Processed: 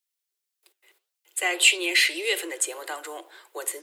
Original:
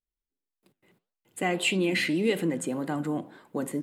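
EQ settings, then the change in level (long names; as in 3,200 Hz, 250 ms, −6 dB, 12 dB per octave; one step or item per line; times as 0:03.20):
Butterworth high-pass 340 Hz 96 dB per octave
tilt shelving filter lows −9 dB, about 1,400 Hz
+4.0 dB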